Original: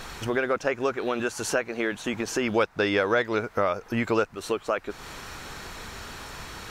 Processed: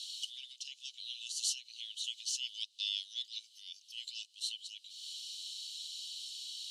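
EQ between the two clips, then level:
Chebyshev high-pass with heavy ripple 2,900 Hz, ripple 6 dB
low-pass filter 6,200 Hz 12 dB per octave
+6.5 dB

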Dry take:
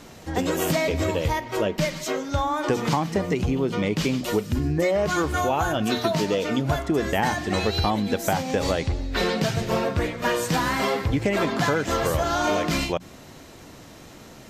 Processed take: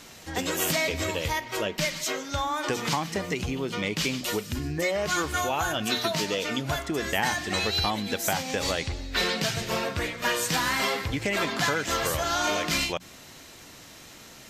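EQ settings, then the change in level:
parametric band 2,000 Hz +4.5 dB 2.3 octaves
high-shelf EQ 2,600 Hz +11 dB
−7.5 dB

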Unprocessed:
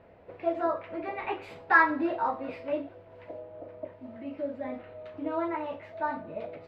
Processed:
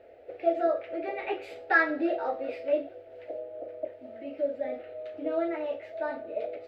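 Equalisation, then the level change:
parametric band 700 Hz +14.5 dB 2.7 octaves
high-shelf EQ 2,200 Hz +10 dB
phaser with its sweep stopped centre 420 Hz, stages 4
−7.5 dB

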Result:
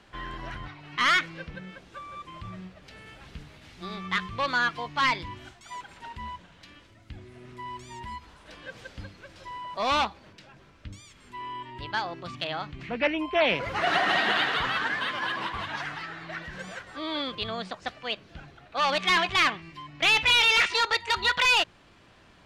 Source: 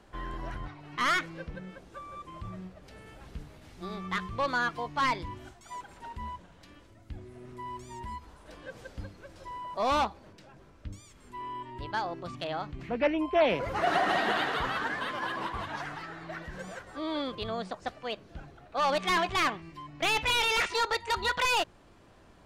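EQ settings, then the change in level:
parametric band 140 Hz +6 dB 2.4 octaves
parametric band 2,900 Hz +13 dB 2.9 octaves
−5.0 dB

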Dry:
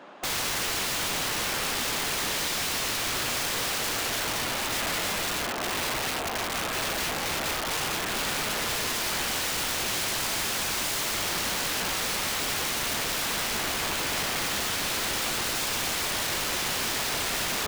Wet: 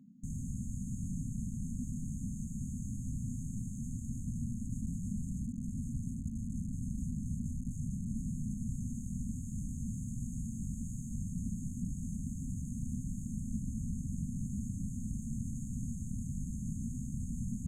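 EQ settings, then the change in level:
linear-phase brick-wall band-stop 260–6,300 Hz
head-to-tape spacing loss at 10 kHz 31 dB
parametric band 4,900 Hz −8 dB 0.36 octaves
+5.5 dB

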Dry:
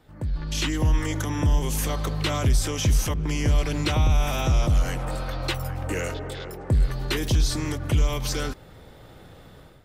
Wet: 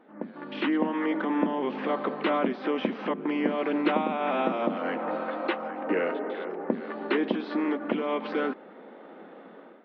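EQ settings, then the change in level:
Gaussian smoothing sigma 3.8 samples
linear-phase brick-wall high-pass 190 Hz
+4.5 dB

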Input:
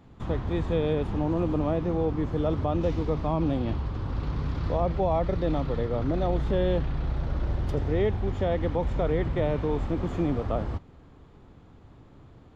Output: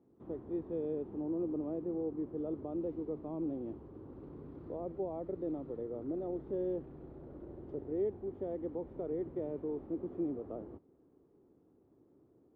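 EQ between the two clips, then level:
resonant band-pass 360 Hz, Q 2.6
high-frequency loss of the air 55 metres
−5.5 dB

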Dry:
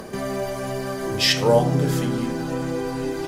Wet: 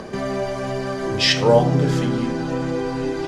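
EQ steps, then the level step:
low-pass filter 5,900 Hz 12 dB per octave
+2.5 dB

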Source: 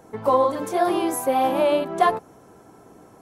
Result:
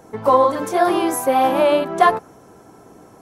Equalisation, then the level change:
parametric band 5,700 Hz +2.5 dB 0.42 octaves
dynamic equaliser 1,500 Hz, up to +4 dB, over −36 dBFS, Q 1.2
+3.5 dB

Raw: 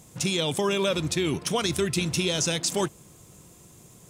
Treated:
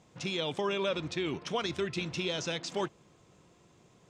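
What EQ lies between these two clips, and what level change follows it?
high-frequency loss of the air 170 metres
low-shelf EQ 230 Hz −10 dB
−3.5 dB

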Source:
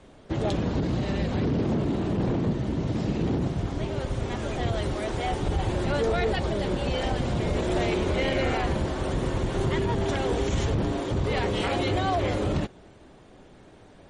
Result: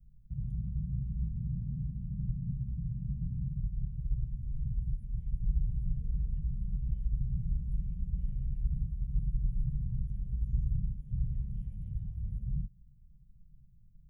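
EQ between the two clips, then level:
inverse Chebyshev band-stop filter 300–8,600 Hz, stop band 50 dB
phaser with its sweep stopped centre 340 Hz, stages 6
notch filter 2,100 Hz, Q 12
+5.0 dB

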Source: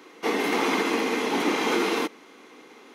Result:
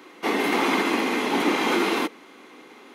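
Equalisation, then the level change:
parametric band 5,800 Hz −4.5 dB 0.54 octaves
notch filter 460 Hz, Q 12
+2.5 dB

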